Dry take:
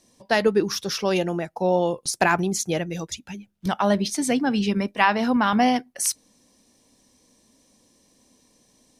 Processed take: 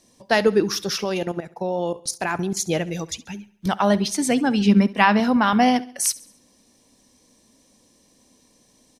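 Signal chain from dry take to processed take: 1.04–2.57 level quantiser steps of 13 dB; 4.65–5.2 bell 210 Hz +7.5 dB; feedback echo 68 ms, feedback 48%, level -20 dB; gain +2 dB

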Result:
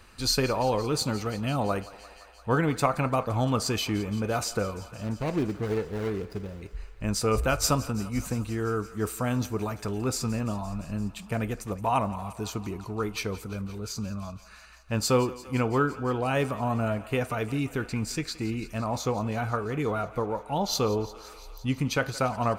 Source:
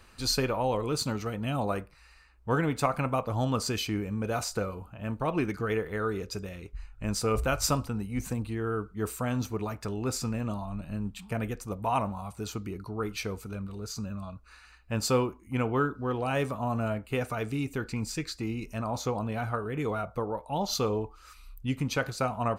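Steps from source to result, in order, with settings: 5.04–6.62 median filter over 41 samples; thinning echo 0.172 s, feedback 80%, high-pass 410 Hz, level -17.5 dB; gain +2.5 dB

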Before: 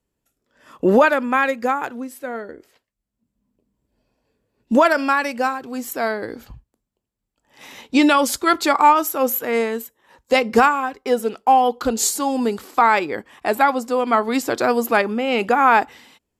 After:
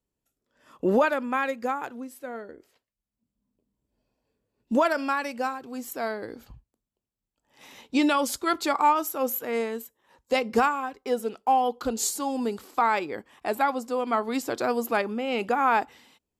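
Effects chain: bell 1800 Hz -2.5 dB; gain -7.5 dB

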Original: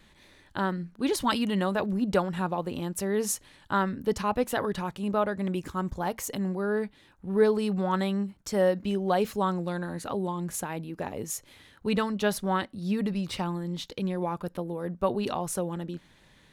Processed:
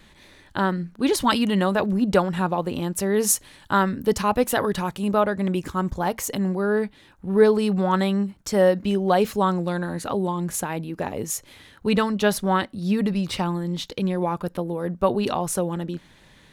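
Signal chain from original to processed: 3.16–5.21 high shelf 7200 Hz +6.5 dB; gain +6 dB

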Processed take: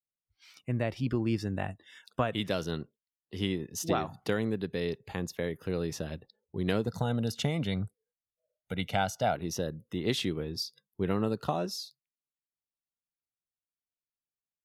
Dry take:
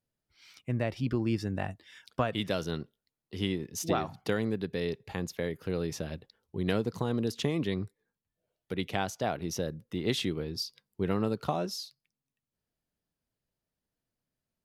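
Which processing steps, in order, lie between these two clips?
spectral noise reduction 21 dB; 6.87–9.35 comb 1.4 ms, depth 67%

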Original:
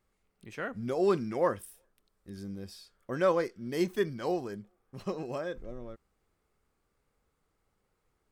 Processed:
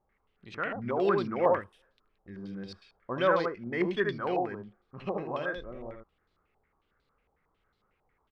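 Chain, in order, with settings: echo 77 ms -4 dB; stepped low-pass 11 Hz 810–4000 Hz; gain -1.5 dB

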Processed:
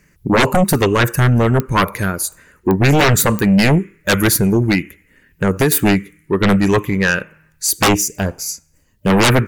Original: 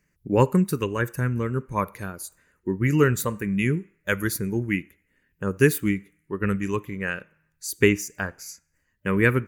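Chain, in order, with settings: 4.29–5.72 compressor 10:1, threshold -22 dBFS, peak gain reduction 11.5 dB; 7.88–9.1 bell 1700 Hz -13.5 dB 1 oct; sine folder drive 17 dB, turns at -3 dBFS; pops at 1.6/2.71/3.39, -1 dBFS; gain -5 dB

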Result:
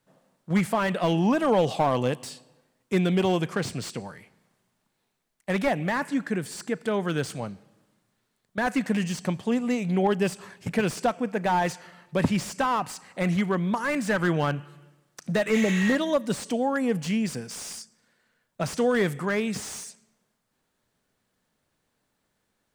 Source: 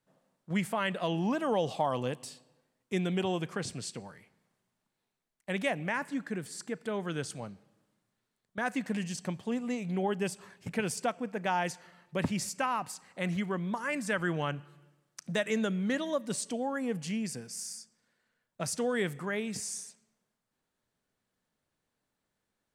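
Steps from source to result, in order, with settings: spectral repair 15.57–15.9, 850–11000 Hz both; slew limiter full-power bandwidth 41 Hz; gain +8 dB

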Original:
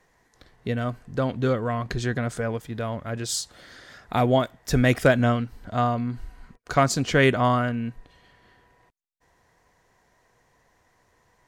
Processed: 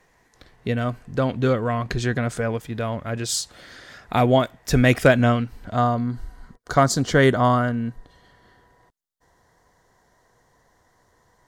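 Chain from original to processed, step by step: bell 2500 Hz +2.5 dB 0.31 oct, from 5.76 s -14.5 dB; gain +3 dB

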